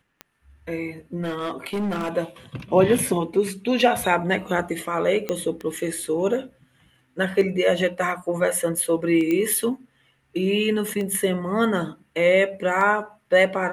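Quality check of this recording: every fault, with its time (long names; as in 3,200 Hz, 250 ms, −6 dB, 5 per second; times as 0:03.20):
scratch tick 33 1/3 rpm −19 dBFS
0:01.22–0:02.10: clipping −22 dBFS
0:02.98: drop-out 4.5 ms
0:05.29: click −12 dBFS
0:09.31: click −13 dBFS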